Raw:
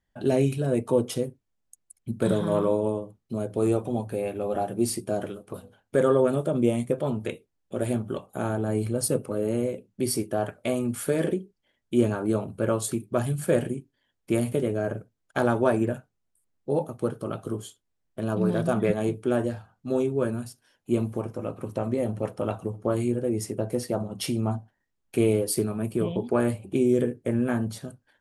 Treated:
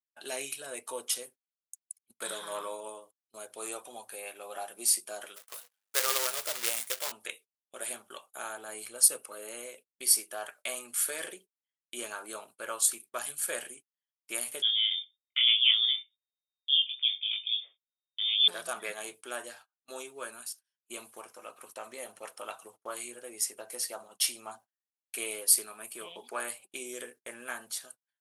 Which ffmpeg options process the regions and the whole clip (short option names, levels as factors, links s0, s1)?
-filter_complex "[0:a]asettb=1/sr,asplit=3[s0][s1][s2];[s0]atrim=end=5.364[s3];[s1]atrim=start=5.36:end=7.12,asetpts=PTS-STARTPTS,afade=t=in:d=0.004:c=qsin,afade=t=out:st=1.756:d=0.004:c=qsin,equalizer=f=270:t=o:w=0.35:g=-14.5,aeval=exprs='val(0)+0.00398*(sin(2*PI*50*n/s)+sin(2*PI*2*50*n/s)/2+sin(2*PI*3*50*n/s)/3+sin(2*PI*4*50*n/s)/4+sin(2*PI*5*50*n/s)/5)':c=same,acrusher=bits=2:mode=log:mix=0:aa=0.000001[s4];[s2]atrim=start=7.116[s5];[s3][s4]acrossfade=d=0.004:c1=hsin:c2=qsin[s6];[s6][s5]acrossfade=d=0.004:c1=qsin:c2=hsin,asettb=1/sr,asplit=3[s7][s8][s9];[s7]atrim=end=14.624[s10];[s8]atrim=start=14.62:end=18.48,asetpts=PTS-STARTPTS,afade=t=in:d=0.004:c=qsin,afade=t=out:st=3.856:d=0.004:c=qsin,equalizer=f=2600:t=o:w=0.71:g=-4,flanger=delay=19.5:depth=2.4:speed=2.5,lowpass=f=3100:t=q:w=0.5098,lowpass=f=3100:t=q:w=0.6013,lowpass=f=3100:t=q:w=0.9,lowpass=f=3100:t=q:w=2.563,afreqshift=-3700[s11];[s9]atrim=start=18.476[s12];[s10][s11]acrossfade=d=0.004:c1=hsin:c2=qsin[s13];[s13][s12]acrossfade=d=0.004:c1=qsin:c2=hsin,highpass=1200,agate=range=0.0447:threshold=0.002:ratio=16:detection=peak,highshelf=f=4500:g=10.5,volume=0.841"